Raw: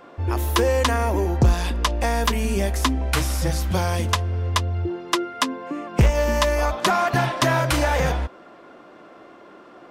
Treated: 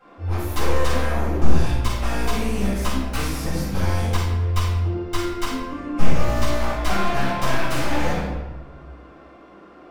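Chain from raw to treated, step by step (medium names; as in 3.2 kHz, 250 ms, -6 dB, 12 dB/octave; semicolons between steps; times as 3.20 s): one-sided wavefolder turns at -20 dBFS; simulated room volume 460 m³, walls mixed, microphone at 7.6 m; trim -16.5 dB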